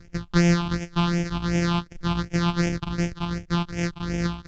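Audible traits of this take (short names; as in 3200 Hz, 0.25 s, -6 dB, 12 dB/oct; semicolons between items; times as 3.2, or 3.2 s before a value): a buzz of ramps at a fixed pitch in blocks of 256 samples; phasing stages 6, 2.7 Hz, lowest notch 490–1100 Hz; µ-law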